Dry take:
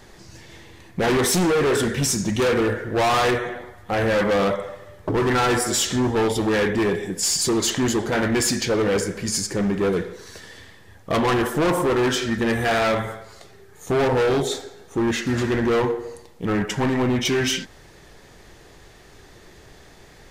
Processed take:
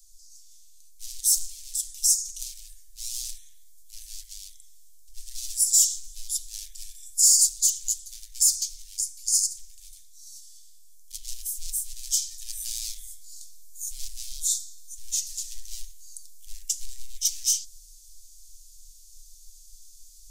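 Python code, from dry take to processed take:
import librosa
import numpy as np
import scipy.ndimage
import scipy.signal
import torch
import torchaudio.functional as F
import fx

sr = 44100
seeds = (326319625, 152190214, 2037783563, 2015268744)

y = scipy.signal.sosfilt(scipy.signal.cheby2(4, 80, [130.0, 1200.0], 'bandstop', fs=sr, output='sos'), x)
y = fx.rider(y, sr, range_db=4, speed_s=2.0)
y = F.gain(torch.from_numpy(y), 6.5).numpy()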